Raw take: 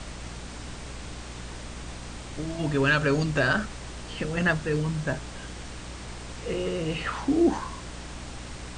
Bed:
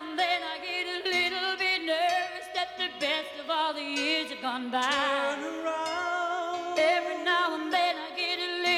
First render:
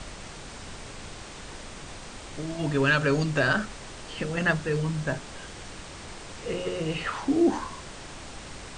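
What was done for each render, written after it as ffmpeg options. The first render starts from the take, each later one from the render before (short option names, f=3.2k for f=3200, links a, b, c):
-af "bandreject=f=60:t=h:w=6,bandreject=f=120:t=h:w=6,bandreject=f=180:t=h:w=6,bandreject=f=240:t=h:w=6,bandreject=f=300:t=h:w=6,bandreject=f=360:t=h:w=6"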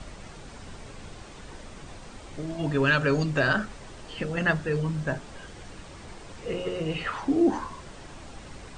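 -af "afftdn=nr=7:nf=-42"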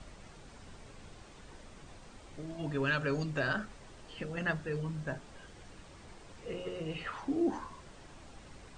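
-af "volume=-9dB"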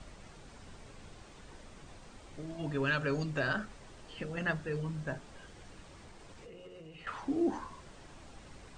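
-filter_complex "[0:a]asettb=1/sr,asplit=3[a][b][c];[a]atrim=end=5.994[d];[b]atrim=start=5.99:end=7.07,asetpts=PTS-STARTPTS,afade=t=in:d=0.004:c=qsin,afade=t=out:st=1.076:d=0.004:c=qsin,acompressor=threshold=-47dB:ratio=10:attack=3.2:release=140:knee=1:detection=peak[e];[c]atrim=start=7.066[f];[d][e]acrossfade=d=0.004:c1=hsin:c2=qsin[g];[g][f]acrossfade=d=0.004:c1=qsin:c2=hsin"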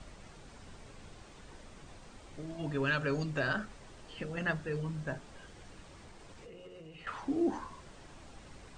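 -af anull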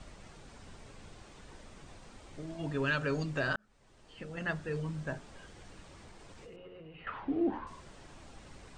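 -filter_complex "[0:a]asettb=1/sr,asplit=3[a][b][c];[a]atrim=end=6.564[d];[b]atrim=start=6.56:end=7.67,asetpts=PTS-STARTPTS,afade=t=in:d=0.004:c=qsin,afade=t=out:st=1.106:d=0.004:c=qsin,lowpass=f=3.2k:w=0.5412,lowpass=f=3.2k:w=1.3066[e];[c]atrim=start=7.666[f];[d][e]acrossfade=d=0.004:c1=hsin:c2=qsin[g];[g][f]acrossfade=d=0.004:c1=qsin:c2=hsin,asplit=2[h][i];[h]atrim=end=3.56,asetpts=PTS-STARTPTS,afade=t=out:st=3.556:d=0.004:c=hsin[j];[i]atrim=start=3.56,asetpts=PTS-STARTPTS,afade=t=in:d=1.16[k];[j][k]concat=n=2:v=0:a=1"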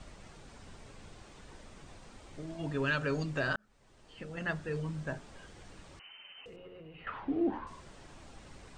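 -filter_complex "[0:a]asettb=1/sr,asplit=3[a][b][c];[a]atrim=end=5.994[d];[b]atrim=start=5.99:end=6.46,asetpts=PTS-STARTPTS,afade=t=in:d=0.004:c=qsin,afade=t=out:st=0.466:d=0.004:c=qsin,lowpass=f=2.6k:t=q:w=0.5098,lowpass=f=2.6k:t=q:w=0.6013,lowpass=f=2.6k:t=q:w=0.9,lowpass=f=2.6k:t=q:w=2.563,afreqshift=-3100[e];[c]atrim=start=6.456[f];[d][e]acrossfade=d=0.004:c1=hsin:c2=qsin[g];[g][f]acrossfade=d=0.004:c1=qsin:c2=hsin"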